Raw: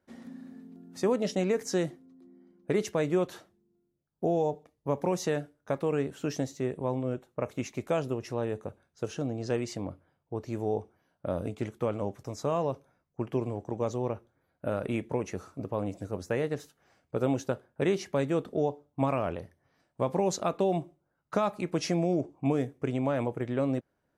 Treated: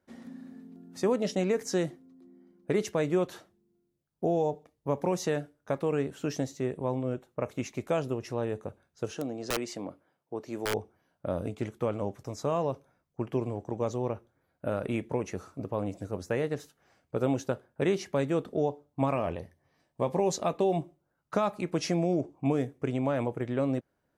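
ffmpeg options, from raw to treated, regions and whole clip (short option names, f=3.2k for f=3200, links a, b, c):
-filter_complex "[0:a]asettb=1/sr,asplit=3[a][b][c];[a]atrim=end=9.134[d];[b]atrim=start=9.13:end=10.74,asetpts=PTS-STARTPTS,afade=t=in:d=0.004:c=qsin,afade=t=out:st=1.606:d=0.004:c=qsin,highpass=220,aeval=exprs='(mod(14.1*val(0)+1,2)-1)/14.1':c=same[e];[c]atrim=start=10.736[f];[d][e]acrossfade=d=0.004:c1=hsin:c2=qsin[g];[g][f]acrossfade=d=0.004:c1=qsin:c2=hsin,asettb=1/sr,asplit=3[h][i][j];[h]atrim=end=19.144[k];[i]atrim=start=19.14:end=20.81,asetpts=PTS-STARTPTS,afade=t=in:d=0.004:c=qsin,afade=t=out:st=1.666:d=0.004:c=qsin,bandreject=f=1.4k:w=6.2,asplit=2[l][m];[m]adelay=13,volume=-11dB[n];[l][n]amix=inputs=2:normalize=0,atrim=end_sample=73647[o];[j]atrim=start=20.806[p];[k][o]acrossfade=d=0.004:c1=hsin:c2=qsin[q];[q][p]acrossfade=d=0.004:c1=qsin:c2=hsin"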